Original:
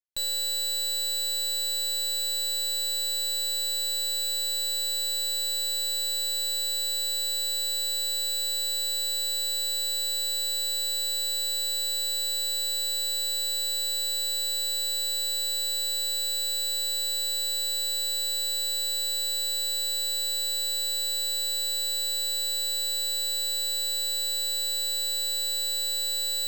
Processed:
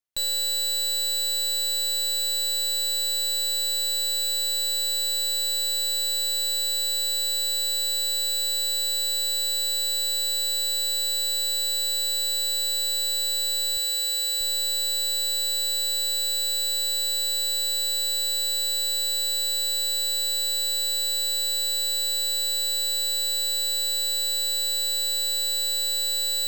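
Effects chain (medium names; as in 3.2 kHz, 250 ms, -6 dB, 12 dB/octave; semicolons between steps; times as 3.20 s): 13.77–14.41 s: high-pass 340 Hz 6 dB/octave; trim +3 dB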